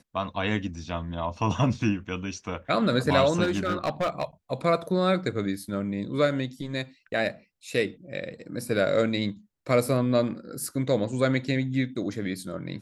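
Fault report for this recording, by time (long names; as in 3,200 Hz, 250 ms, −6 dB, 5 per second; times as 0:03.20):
0:03.43–0:04.24: clipping −21 dBFS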